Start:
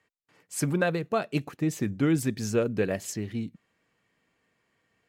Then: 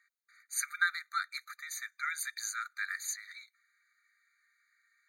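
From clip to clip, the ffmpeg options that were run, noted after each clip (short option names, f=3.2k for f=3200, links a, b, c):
-af "afftfilt=real='re*eq(mod(floor(b*sr/1024/1200),2),1)':imag='im*eq(mod(floor(b*sr/1024/1200),2),1)':win_size=1024:overlap=0.75,volume=3.5dB"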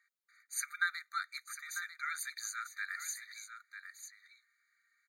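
-af "aecho=1:1:946:0.335,volume=-3.5dB"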